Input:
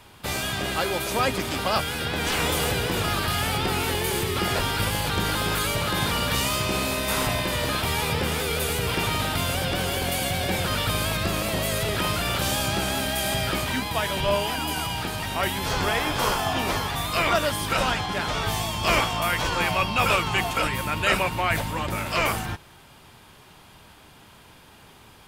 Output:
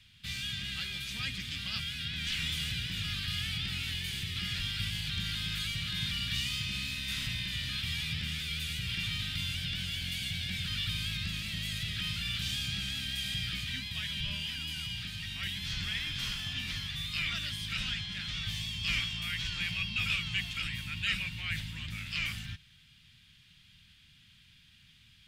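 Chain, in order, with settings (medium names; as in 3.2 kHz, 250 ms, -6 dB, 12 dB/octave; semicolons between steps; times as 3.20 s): FFT filter 160 Hz 0 dB, 230 Hz -7 dB, 410 Hz -27 dB, 610 Hz -28 dB, 940 Hz -25 dB, 1.8 kHz -2 dB, 3.4 kHz +6 dB, 11 kHz -10 dB; trim -9 dB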